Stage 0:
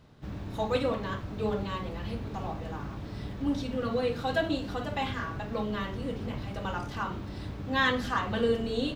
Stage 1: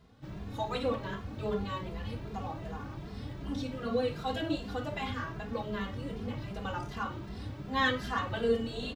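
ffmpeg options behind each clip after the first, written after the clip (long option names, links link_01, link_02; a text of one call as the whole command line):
ffmpeg -i in.wav -filter_complex "[0:a]asplit=2[link_01][link_02];[link_02]adelay=2.5,afreqshift=2.6[link_03];[link_01][link_03]amix=inputs=2:normalize=1" out.wav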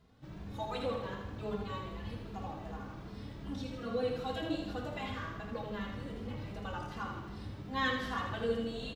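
ffmpeg -i in.wav -af "aecho=1:1:79|158|237|316|395|474|553:0.501|0.286|0.163|0.0928|0.0529|0.0302|0.0172,volume=-5dB" out.wav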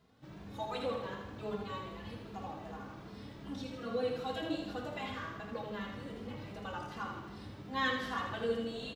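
ffmpeg -i in.wav -af "highpass=frequency=160:poles=1" out.wav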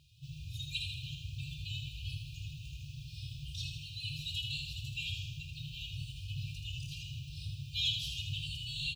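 ffmpeg -i in.wav -af "afftfilt=real='re*(1-between(b*sr/4096,160,2400))':imag='im*(1-between(b*sr/4096,160,2400))':win_size=4096:overlap=0.75,volume=9.5dB" out.wav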